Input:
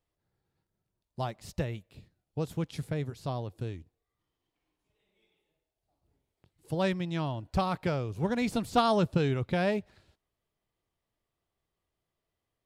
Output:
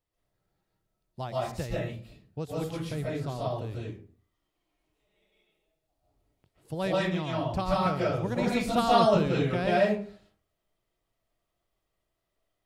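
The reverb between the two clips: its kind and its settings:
comb and all-pass reverb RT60 0.45 s, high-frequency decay 0.55×, pre-delay 100 ms, DRR −6 dB
level −3 dB

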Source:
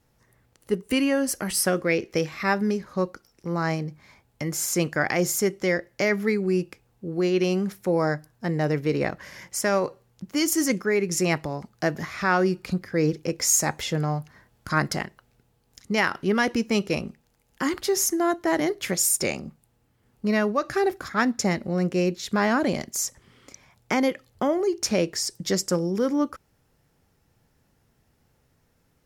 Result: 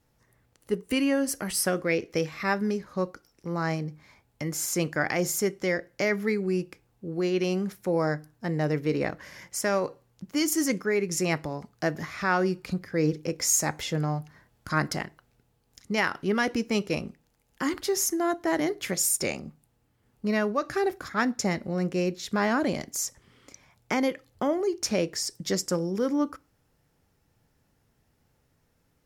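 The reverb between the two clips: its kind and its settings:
feedback delay network reverb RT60 0.37 s, low-frequency decay 1×, high-frequency decay 0.65×, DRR 19.5 dB
level −3 dB

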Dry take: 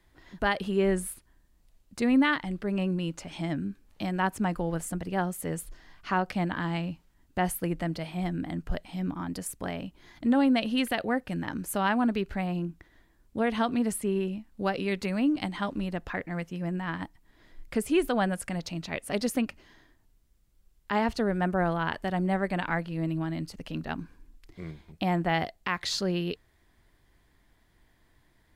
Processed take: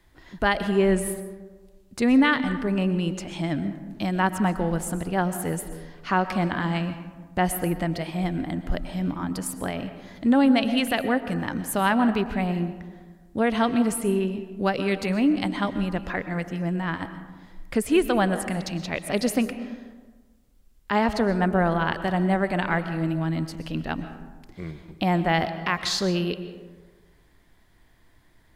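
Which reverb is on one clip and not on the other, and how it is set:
comb and all-pass reverb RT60 1.4 s, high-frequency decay 0.4×, pre-delay 85 ms, DRR 10.5 dB
level +4.5 dB

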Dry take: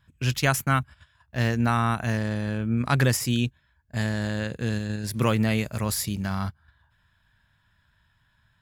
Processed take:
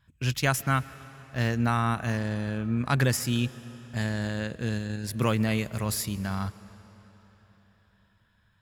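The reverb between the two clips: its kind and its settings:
comb and all-pass reverb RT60 4.4 s, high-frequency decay 0.85×, pre-delay 95 ms, DRR 17.5 dB
level −2.5 dB

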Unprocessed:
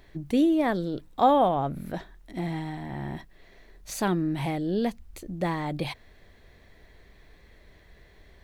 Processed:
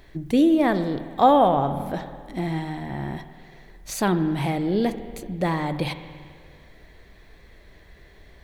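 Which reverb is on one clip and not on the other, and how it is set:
spring reverb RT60 2 s, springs 49/55 ms, chirp 25 ms, DRR 10.5 dB
level +4 dB

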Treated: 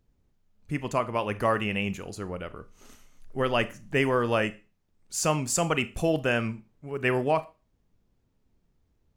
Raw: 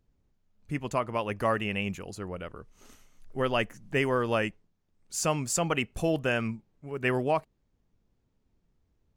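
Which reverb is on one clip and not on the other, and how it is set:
four-comb reverb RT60 0.31 s, combs from 26 ms, DRR 13.5 dB
level +2 dB

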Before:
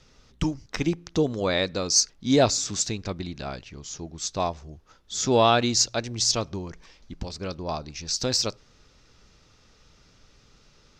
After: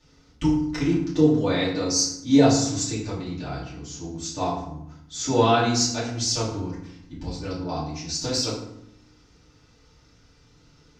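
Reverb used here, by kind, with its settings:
feedback delay network reverb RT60 0.75 s, low-frequency decay 1.6×, high-frequency decay 0.65×, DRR −10 dB
level −10.5 dB

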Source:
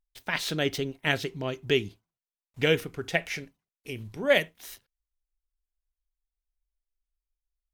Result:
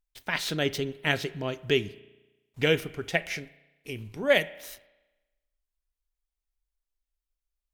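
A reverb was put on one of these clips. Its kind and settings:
spring reverb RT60 1.1 s, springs 34 ms, chirp 35 ms, DRR 17.5 dB

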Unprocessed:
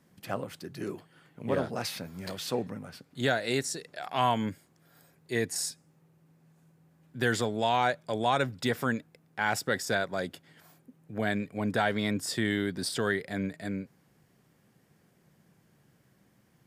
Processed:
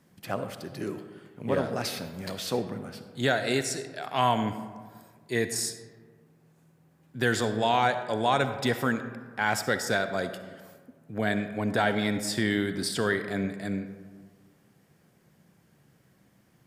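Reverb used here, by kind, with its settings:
comb and all-pass reverb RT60 1.6 s, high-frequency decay 0.45×, pre-delay 20 ms, DRR 9.5 dB
level +2 dB

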